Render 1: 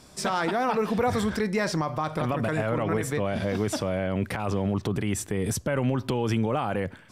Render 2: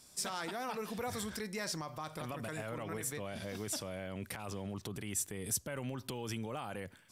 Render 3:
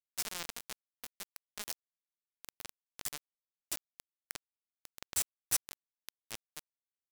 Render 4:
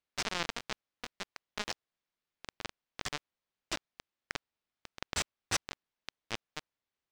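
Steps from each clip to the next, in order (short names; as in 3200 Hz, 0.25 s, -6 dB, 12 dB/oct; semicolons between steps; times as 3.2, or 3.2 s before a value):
pre-emphasis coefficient 0.8; gain -1.5 dB
bit-crush 5-bit; gain +2.5 dB
air absorption 150 m; gain +10.5 dB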